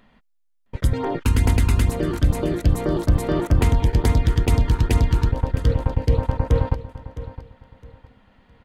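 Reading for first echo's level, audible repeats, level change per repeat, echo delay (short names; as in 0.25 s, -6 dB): -14.5 dB, 2, -11.5 dB, 0.662 s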